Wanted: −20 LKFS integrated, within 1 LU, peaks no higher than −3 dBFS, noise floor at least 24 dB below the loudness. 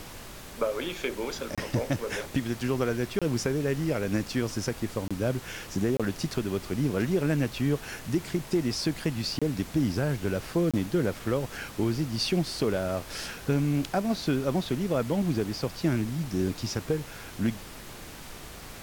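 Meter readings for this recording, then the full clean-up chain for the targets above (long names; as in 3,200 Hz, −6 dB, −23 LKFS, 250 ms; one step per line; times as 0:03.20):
number of dropouts 6; longest dropout 26 ms; background noise floor −43 dBFS; target noise floor −54 dBFS; integrated loudness −29.5 LKFS; sample peak −15.5 dBFS; target loudness −20.0 LKFS
→ repair the gap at 0:01.55/0:03.19/0:05.08/0:05.97/0:09.39/0:10.71, 26 ms
noise reduction from a noise print 11 dB
level +9.5 dB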